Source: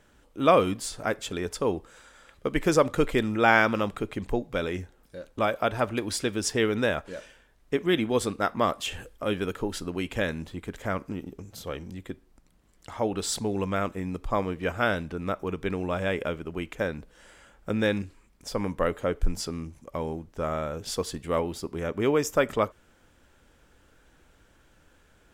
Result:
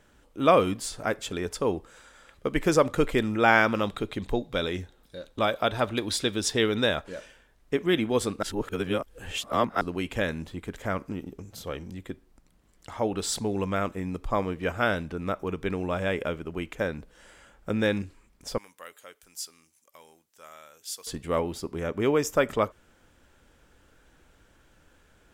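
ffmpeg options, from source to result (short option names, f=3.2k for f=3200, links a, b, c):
-filter_complex "[0:a]asettb=1/sr,asplit=3[a][b][c];[a]atrim=end=3.834[d];[b]atrim=start=3.83:end=7.04,asetpts=PTS-STARTPTS,afade=t=in:d=0.004:c=qsin,afade=t=out:st=3.206:d=0.004:c=qsin,equalizer=f=3.7k:w=4.5:g=11[e];[c]atrim=start=7.036[f];[d][e]acrossfade=d=0.004:c1=hsin:c2=qsin[g];[g][f]acrossfade=d=0.004:c1=qsin:c2=hsin,asettb=1/sr,asplit=3[h][i][j];[h]atrim=end=18.584[k];[i]atrim=start=18.58:end=21.07,asetpts=PTS-STARTPTS,afade=t=in:d=0.004:c=qsin,afade=t=out:st=2.486:d=0.004:c=qsin,aderivative[l];[j]atrim=start=21.066[m];[k][l]acrossfade=d=0.004:c1=hsin:c2=qsin[n];[n][m]acrossfade=d=0.004:c1=qsin:c2=hsin,asplit=3[o][p][q];[o]atrim=end=8.432[r];[p]atrim=start=8.428:end=9.812,asetpts=PTS-STARTPTS,areverse[s];[q]atrim=start=9.808[t];[r][s]acrossfade=d=0.004:c1=hsin:c2=hsin[u];[u][t]acrossfade=d=0.004:c1=hsin:c2=hsin"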